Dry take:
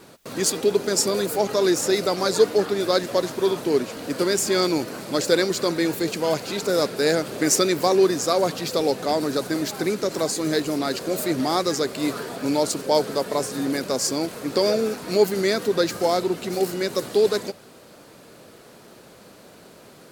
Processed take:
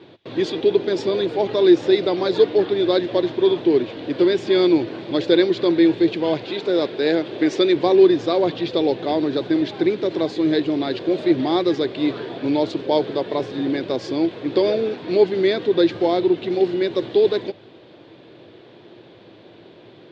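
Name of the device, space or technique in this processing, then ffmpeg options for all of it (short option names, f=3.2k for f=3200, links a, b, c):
guitar cabinet: -filter_complex "[0:a]highpass=85,equalizer=f=110:t=q:w=4:g=9,equalizer=f=210:t=q:w=4:g=-4,equalizer=f=340:t=q:w=4:g=10,equalizer=f=1.3k:t=q:w=4:g=-8,equalizer=f=3.5k:t=q:w=4:g=8,lowpass=f=3.6k:w=0.5412,lowpass=f=3.6k:w=1.3066,asettb=1/sr,asplit=3[a][b][c];[a]atrim=end=6.454[d];[b]atrim=start=6.45:end=7.76,asetpts=PTS-STARTPTS,afade=t=in:d=0.004:c=qsin,afade=t=out:st=1.306:d=0.004:c=qsin,highpass=f=220:p=1[e];[c]atrim=start=7.756[f];[d][e]acrossfade=d=0.004:c1=hsin:c2=qsin[g];[g][f]acrossfade=d=0.004:c1=qsin:c2=hsin"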